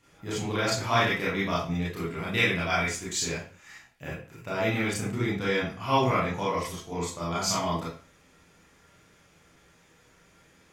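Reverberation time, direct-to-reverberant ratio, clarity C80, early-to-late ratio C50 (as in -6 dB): 0.40 s, -8.0 dB, 8.5 dB, 2.0 dB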